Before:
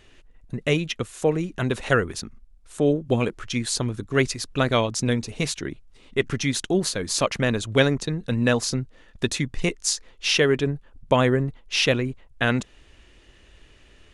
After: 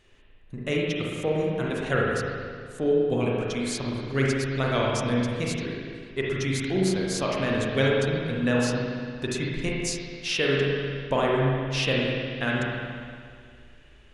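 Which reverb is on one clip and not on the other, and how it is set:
spring reverb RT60 2.1 s, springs 37/58 ms, chirp 80 ms, DRR −4 dB
level −7.5 dB

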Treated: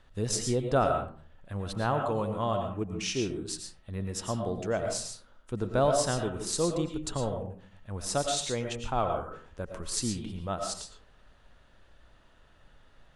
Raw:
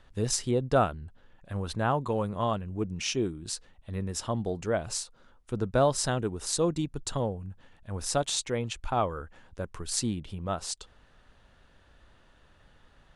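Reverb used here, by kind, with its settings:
comb and all-pass reverb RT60 0.47 s, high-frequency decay 0.5×, pre-delay 70 ms, DRR 4 dB
level −2 dB

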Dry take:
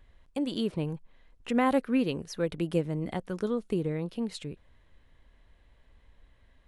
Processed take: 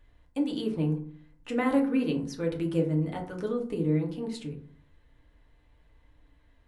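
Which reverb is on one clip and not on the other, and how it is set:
feedback delay network reverb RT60 0.51 s, low-frequency decay 1.4×, high-frequency decay 0.45×, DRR 0 dB
level −4 dB

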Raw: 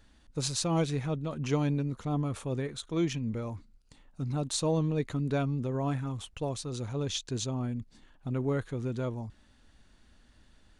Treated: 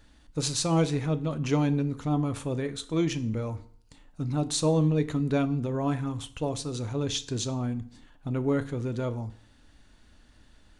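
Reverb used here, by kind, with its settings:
feedback delay network reverb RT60 0.55 s, low-frequency decay 1×, high-frequency decay 0.85×, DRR 10.5 dB
level +3 dB

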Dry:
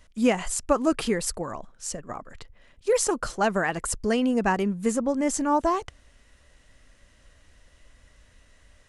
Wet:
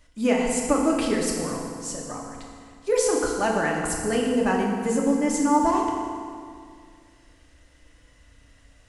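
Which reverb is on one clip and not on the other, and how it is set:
feedback delay network reverb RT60 2.1 s, low-frequency decay 1.25×, high-frequency decay 0.8×, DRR −1.5 dB
level −2.5 dB

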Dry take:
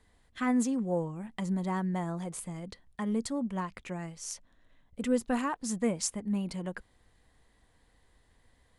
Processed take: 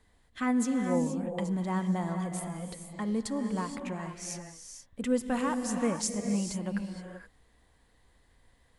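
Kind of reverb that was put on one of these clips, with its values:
reverb whose tail is shaped and stops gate 500 ms rising, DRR 5 dB

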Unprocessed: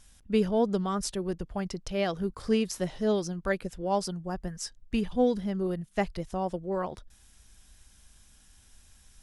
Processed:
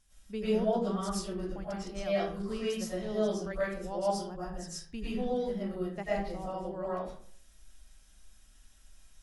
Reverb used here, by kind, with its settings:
comb and all-pass reverb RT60 0.55 s, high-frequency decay 0.6×, pre-delay 75 ms, DRR −9.5 dB
level −13 dB

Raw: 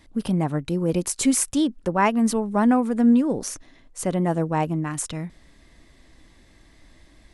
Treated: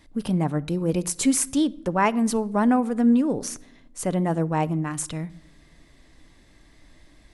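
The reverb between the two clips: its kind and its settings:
rectangular room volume 2,400 cubic metres, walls furnished, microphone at 0.39 metres
level −1 dB

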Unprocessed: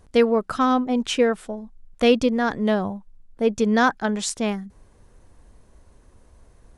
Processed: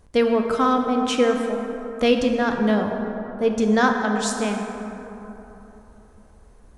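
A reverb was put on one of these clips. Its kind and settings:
dense smooth reverb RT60 3.5 s, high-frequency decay 0.4×, DRR 3 dB
level −1 dB

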